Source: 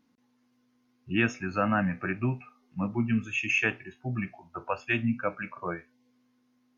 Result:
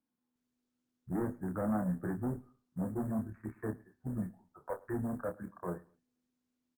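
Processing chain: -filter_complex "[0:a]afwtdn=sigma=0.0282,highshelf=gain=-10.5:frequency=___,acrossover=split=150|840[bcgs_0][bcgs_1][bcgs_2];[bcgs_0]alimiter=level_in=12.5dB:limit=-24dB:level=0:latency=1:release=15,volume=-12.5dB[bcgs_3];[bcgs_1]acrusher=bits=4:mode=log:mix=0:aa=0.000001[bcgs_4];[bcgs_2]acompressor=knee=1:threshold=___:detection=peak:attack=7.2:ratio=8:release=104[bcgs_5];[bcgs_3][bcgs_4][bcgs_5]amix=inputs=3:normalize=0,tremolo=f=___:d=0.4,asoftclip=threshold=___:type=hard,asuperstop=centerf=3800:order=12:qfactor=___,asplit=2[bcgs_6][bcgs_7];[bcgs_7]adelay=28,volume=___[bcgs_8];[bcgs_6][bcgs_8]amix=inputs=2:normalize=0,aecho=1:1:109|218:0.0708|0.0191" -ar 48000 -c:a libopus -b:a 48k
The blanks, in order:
5300, -45dB, 79, -31dB, 0.65, -7dB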